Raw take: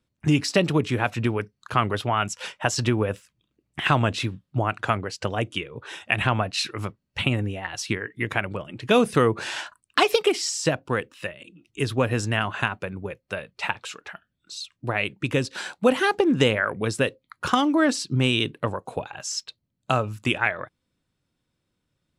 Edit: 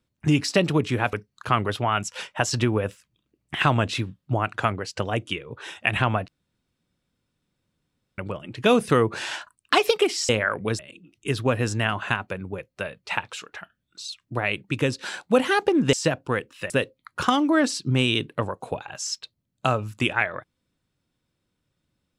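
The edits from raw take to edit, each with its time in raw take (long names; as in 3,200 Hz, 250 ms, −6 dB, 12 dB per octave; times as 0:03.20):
0:01.13–0:01.38: remove
0:06.53–0:08.43: fill with room tone
0:10.54–0:11.31: swap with 0:16.45–0:16.95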